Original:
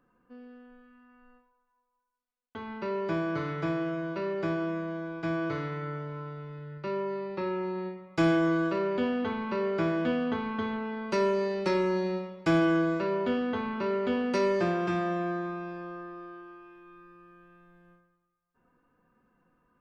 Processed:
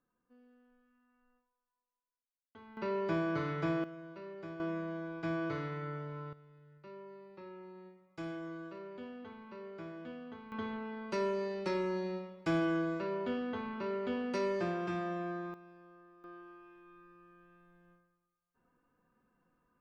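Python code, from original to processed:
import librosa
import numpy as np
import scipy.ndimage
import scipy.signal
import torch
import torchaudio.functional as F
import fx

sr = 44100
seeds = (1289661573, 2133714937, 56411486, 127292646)

y = fx.gain(x, sr, db=fx.steps((0.0, -15.0), (2.77, -3.0), (3.84, -15.0), (4.6, -5.0), (6.33, -18.0), (10.52, -7.5), (15.54, -18.0), (16.24, -6.0)))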